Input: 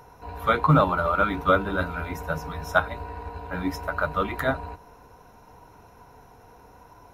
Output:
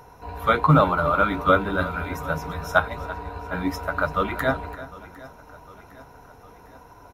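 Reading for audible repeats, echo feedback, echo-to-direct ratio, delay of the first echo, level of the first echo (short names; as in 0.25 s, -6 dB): 4, no steady repeat, -14.5 dB, 0.337 s, -16.5 dB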